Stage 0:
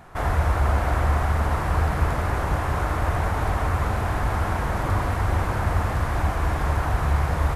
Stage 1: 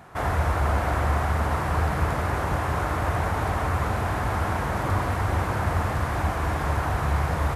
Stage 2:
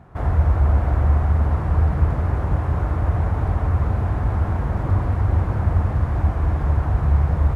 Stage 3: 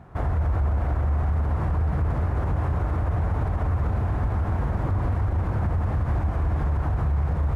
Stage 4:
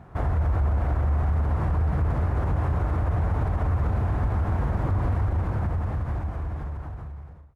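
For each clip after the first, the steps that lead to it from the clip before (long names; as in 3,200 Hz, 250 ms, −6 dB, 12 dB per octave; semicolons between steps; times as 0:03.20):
high-pass filter 72 Hz
spectral tilt −3.5 dB per octave; level −5 dB
brickwall limiter −17 dBFS, peak gain reduction 10.5 dB
fade-out on the ending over 2.38 s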